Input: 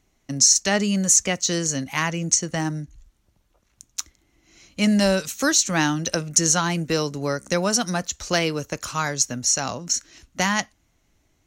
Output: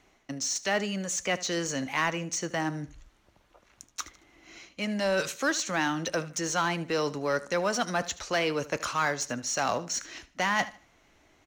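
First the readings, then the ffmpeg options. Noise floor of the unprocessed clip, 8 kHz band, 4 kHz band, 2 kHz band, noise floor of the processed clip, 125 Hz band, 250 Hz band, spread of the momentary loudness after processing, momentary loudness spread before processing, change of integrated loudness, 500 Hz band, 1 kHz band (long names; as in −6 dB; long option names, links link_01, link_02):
−67 dBFS, −13.5 dB, −8.5 dB, −3.0 dB, −65 dBFS, −10.5 dB, −9.5 dB, 12 LU, 12 LU, −8.5 dB, −4.0 dB, −2.5 dB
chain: -filter_complex "[0:a]acrossover=split=730|2800[link_01][link_02][link_03];[link_02]acrusher=bits=3:mode=log:mix=0:aa=0.000001[link_04];[link_01][link_04][link_03]amix=inputs=3:normalize=0,lowshelf=frequency=230:gain=10.5,areverse,acompressor=threshold=-28dB:ratio=5,areverse,asplit=2[link_05][link_06];[link_06]highpass=frequency=720:poles=1,volume=16dB,asoftclip=type=tanh:threshold=-12.5dB[link_07];[link_05][link_07]amix=inputs=2:normalize=0,lowpass=frequency=2800:poles=1,volume=-6dB,bass=frequency=250:gain=-8,treble=frequency=4000:gain=-3,aecho=1:1:76|152|228:0.133|0.04|0.012"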